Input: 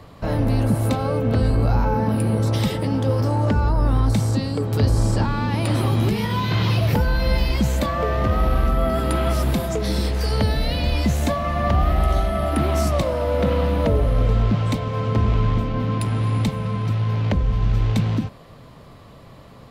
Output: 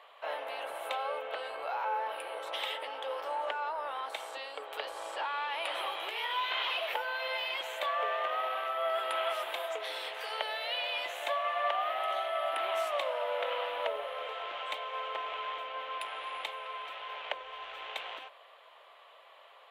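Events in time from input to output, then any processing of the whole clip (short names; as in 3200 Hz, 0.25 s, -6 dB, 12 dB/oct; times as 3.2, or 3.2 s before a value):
4.01–4.69 HPF 130 Hz 24 dB/oct
whole clip: inverse Chebyshev high-pass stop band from 230 Hz, stop band 50 dB; resonant high shelf 4000 Hz -8 dB, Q 3; gain -6.5 dB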